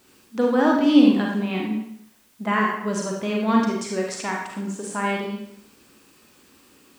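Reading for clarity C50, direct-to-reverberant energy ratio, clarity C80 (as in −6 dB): 1.0 dB, −1.5 dB, 5.0 dB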